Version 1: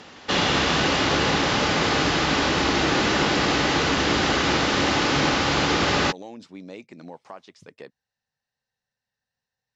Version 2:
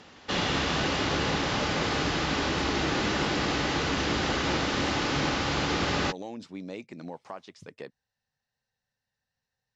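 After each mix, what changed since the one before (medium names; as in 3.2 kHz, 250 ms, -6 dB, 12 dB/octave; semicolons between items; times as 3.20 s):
background -7.0 dB; master: add bass shelf 130 Hz +5.5 dB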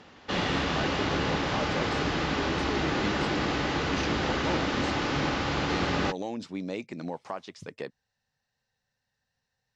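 speech +4.5 dB; background: add treble shelf 4.8 kHz -9 dB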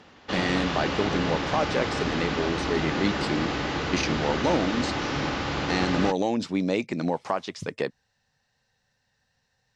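speech +9.0 dB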